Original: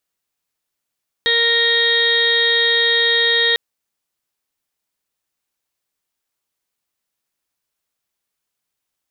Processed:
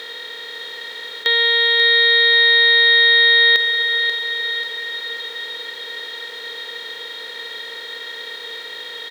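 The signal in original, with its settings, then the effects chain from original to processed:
steady harmonic partials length 2.30 s, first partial 466 Hz, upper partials −13/−12.5/5/−13.5/−18.5/0/5/−6 dB, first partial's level −22 dB
compressor on every frequency bin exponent 0.2
Bessel high-pass filter 470 Hz, order 2
on a send: repeating echo 537 ms, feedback 56%, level −8 dB

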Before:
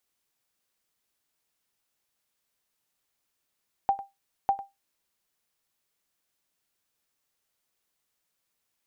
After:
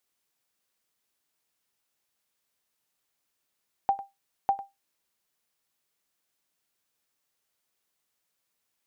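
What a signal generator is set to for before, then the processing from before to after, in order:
ping with an echo 791 Hz, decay 0.19 s, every 0.60 s, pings 2, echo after 0.10 s, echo −16 dB −15 dBFS
low-shelf EQ 70 Hz −6.5 dB

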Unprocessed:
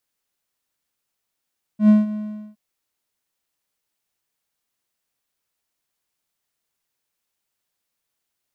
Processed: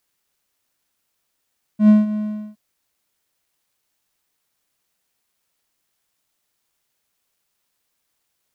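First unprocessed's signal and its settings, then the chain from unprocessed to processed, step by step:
note with an ADSR envelope triangle 212 Hz, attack 98 ms, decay 169 ms, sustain −16 dB, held 0.34 s, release 426 ms −5.5 dBFS
in parallel at −2 dB: downward compressor, threshold −23 dBFS
on the sum: bit reduction 12 bits

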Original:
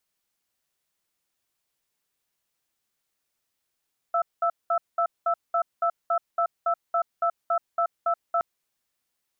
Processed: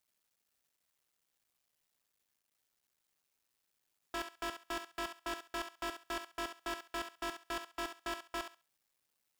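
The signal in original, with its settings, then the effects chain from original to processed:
tone pair in a cadence 684 Hz, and 1,320 Hz, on 0.08 s, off 0.20 s, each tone −23 dBFS 4.27 s
sub-harmonics by changed cycles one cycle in 2, muted
hard clipping −33.5 dBFS
feedback echo with a high-pass in the loop 68 ms, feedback 21%, high-pass 550 Hz, level −8 dB

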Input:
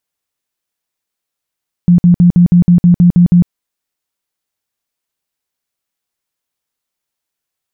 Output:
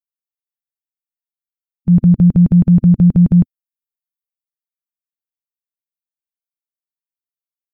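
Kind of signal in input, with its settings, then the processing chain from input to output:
tone bursts 175 Hz, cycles 18, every 0.16 s, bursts 10, −3 dBFS
spectral dynamics exaggerated over time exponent 3
transient designer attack −2 dB, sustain +3 dB

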